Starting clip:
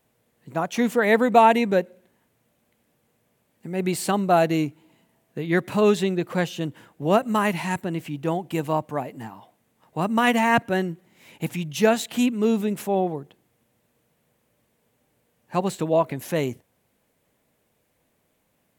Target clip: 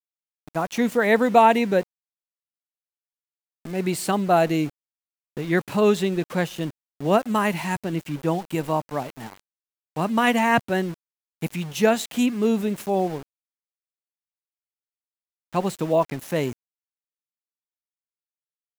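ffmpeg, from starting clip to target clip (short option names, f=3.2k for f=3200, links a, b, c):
-filter_complex "[0:a]asettb=1/sr,asplit=3[a][b][c];[a]atrim=end=7.924[d];[b]atrim=start=7.92:end=8.55,asetpts=PTS-STARTPTS,afade=t=in:d=0.004:c=qsin,afade=t=out:st=0.626:d=0.004:c=qsin,aecho=1:1:6.4:0.32,atrim=end_sample=27783[e];[c]atrim=start=8.546[f];[d][e]acrossfade=d=0.004:c1=hsin:c2=qsin[g];[g][f]acrossfade=d=0.004:c1=qsin:c2=hsin,asettb=1/sr,asplit=3[h][i][j];[h]atrim=end=13.074[k];[i]atrim=start=13.07:end=15.56,asetpts=PTS-STARTPTS,afade=t=in:d=0.004:c=qsin,afade=t=out:st=2.486:d=0.004:c=qsin,adynamicsmooth=sensitivity=7.5:basefreq=2.1k[l];[j]atrim=start=15.556[m];[k][l]acrossfade=d=0.004:c1=hsin:c2=qsin[n];[n][m]acrossfade=d=0.004:c1=qsin:c2=hsin,aeval=exprs='val(0)*gte(abs(val(0)),0.0158)':c=same"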